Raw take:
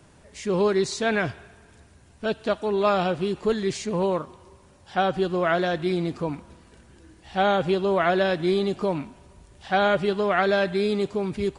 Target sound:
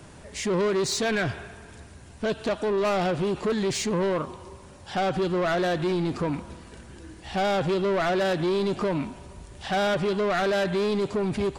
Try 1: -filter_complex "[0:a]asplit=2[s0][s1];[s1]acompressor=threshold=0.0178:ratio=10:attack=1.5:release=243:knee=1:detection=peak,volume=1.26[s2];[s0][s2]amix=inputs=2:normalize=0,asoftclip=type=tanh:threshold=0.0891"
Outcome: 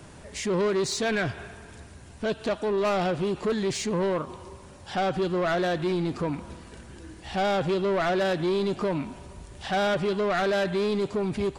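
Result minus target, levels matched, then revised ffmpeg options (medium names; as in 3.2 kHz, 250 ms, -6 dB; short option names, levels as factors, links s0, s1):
compression: peak gain reduction +8 dB
-filter_complex "[0:a]asplit=2[s0][s1];[s1]acompressor=threshold=0.0501:ratio=10:attack=1.5:release=243:knee=1:detection=peak,volume=1.26[s2];[s0][s2]amix=inputs=2:normalize=0,asoftclip=type=tanh:threshold=0.0891"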